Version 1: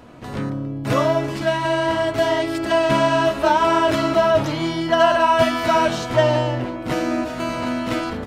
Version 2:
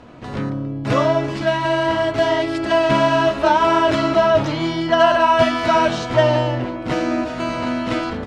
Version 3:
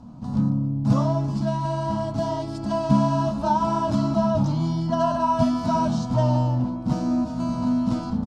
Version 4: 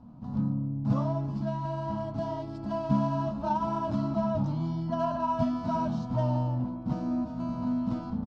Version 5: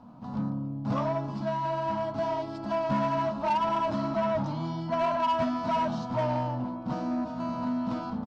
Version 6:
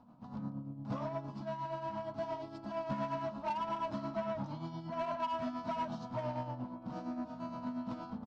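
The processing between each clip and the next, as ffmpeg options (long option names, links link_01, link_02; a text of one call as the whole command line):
ffmpeg -i in.wav -af "lowpass=6200,volume=1.5dB" out.wav
ffmpeg -i in.wav -af "firequalizer=gain_entry='entry(100,0);entry(210,9);entry(360,-18);entry(870,-4);entry(1900,-26);entry(4800,-6)':delay=0.05:min_phase=1" out.wav
ffmpeg -i in.wav -af "adynamicsmooth=sensitivity=1:basefreq=3600,volume=-7dB" out.wav
ffmpeg -i in.wav -filter_complex "[0:a]asplit=2[link_01][link_02];[link_02]highpass=frequency=720:poles=1,volume=18dB,asoftclip=type=tanh:threshold=-14.5dB[link_03];[link_01][link_03]amix=inputs=2:normalize=0,lowpass=frequency=5200:poles=1,volume=-6dB,volume=-3.5dB" out.wav
ffmpeg -i in.wav -af "tremolo=f=8.6:d=0.55,volume=-7.5dB" out.wav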